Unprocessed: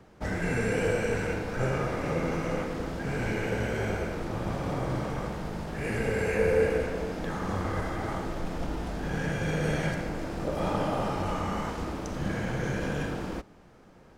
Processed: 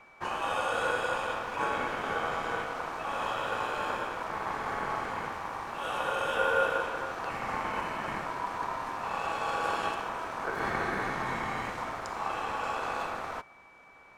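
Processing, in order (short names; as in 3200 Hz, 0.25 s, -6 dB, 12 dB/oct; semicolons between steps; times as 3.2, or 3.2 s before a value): ring modulator 980 Hz; whine 2300 Hz -56 dBFS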